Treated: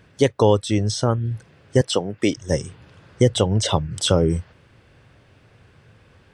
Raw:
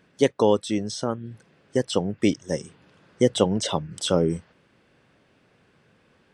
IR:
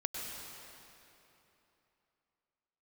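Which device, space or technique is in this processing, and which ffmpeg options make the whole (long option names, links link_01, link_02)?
car stereo with a boomy subwoofer: -filter_complex "[0:a]lowshelf=frequency=140:width_type=q:width=1.5:gain=9.5,alimiter=limit=-9.5dB:level=0:latency=1:release=350,asettb=1/sr,asplit=3[link_01][link_02][link_03];[link_01]atrim=end=1.814[link_04];[link_02]atrim=start=1.81:end=2.37,asetpts=PTS-STARTPTS,afade=type=in:duration=0.004:curve=qsin,afade=type=out:start_time=0.556:duration=0.004:curve=qsin,highpass=230[link_05];[link_03]atrim=start=2.366[link_06];[link_04][link_05]acrossfade=duration=0.004:curve1=hsin:curve2=qsin[link_07];[link_07][link_06]acrossfade=duration=0.004:curve1=qsin:curve2=hsin,volume=6dB"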